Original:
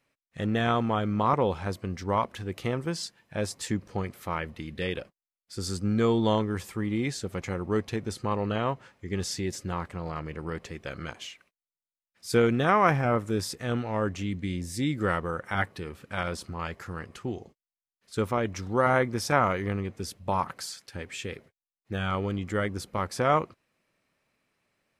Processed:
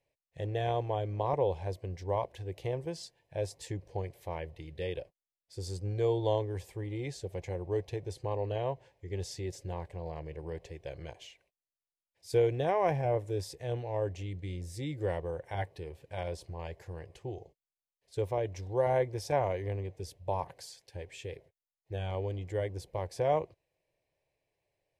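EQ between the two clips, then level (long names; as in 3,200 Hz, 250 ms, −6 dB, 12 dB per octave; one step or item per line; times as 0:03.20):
parametric band 320 Hz −3 dB 1.1 octaves
high-shelf EQ 2,100 Hz −11 dB
phaser with its sweep stopped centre 540 Hz, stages 4
0.0 dB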